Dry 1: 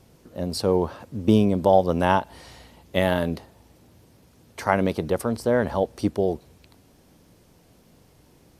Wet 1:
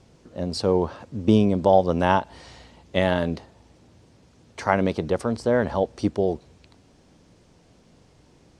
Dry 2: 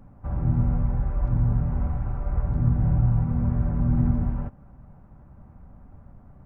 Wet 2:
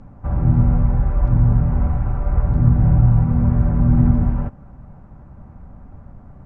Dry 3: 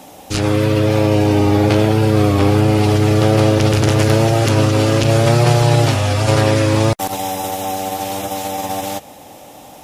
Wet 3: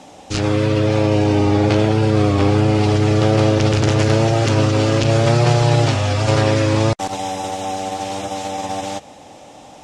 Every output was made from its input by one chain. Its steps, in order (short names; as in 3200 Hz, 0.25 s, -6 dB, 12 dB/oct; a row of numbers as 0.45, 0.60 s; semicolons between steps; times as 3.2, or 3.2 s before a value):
LPF 8000 Hz 24 dB/oct; normalise peaks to -3 dBFS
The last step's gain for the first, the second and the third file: 0.0, +7.5, -2.0 dB